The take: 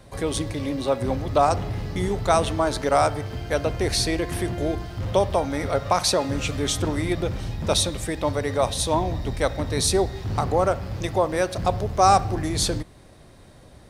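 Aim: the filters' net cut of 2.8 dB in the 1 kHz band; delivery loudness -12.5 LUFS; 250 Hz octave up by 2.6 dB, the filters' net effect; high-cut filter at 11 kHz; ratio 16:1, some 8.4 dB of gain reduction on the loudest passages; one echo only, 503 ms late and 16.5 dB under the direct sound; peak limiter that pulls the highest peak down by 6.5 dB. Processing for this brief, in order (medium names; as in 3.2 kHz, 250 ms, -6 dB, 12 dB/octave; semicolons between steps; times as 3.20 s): low-pass 11 kHz; peaking EQ 250 Hz +4 dB; peaking EQ 1 kHz -4.5 dB; compression 16:1, threshold -23 dBFS; peak limiter -19.5 dBFS; delay 503 ms -16.5 dB; trim +17.5 dB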